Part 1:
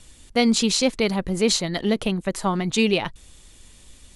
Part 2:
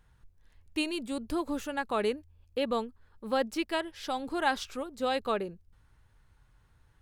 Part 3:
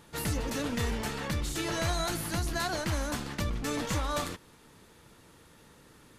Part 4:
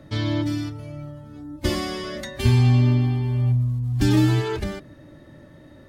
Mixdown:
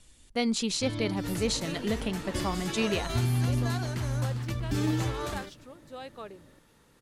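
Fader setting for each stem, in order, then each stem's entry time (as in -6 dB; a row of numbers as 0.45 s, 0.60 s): -9.0 dB, -12.5 dB, -5.5 dB, -10.5 dB; 0.00 s, 0.90 s, 1.10 s, 0.70 s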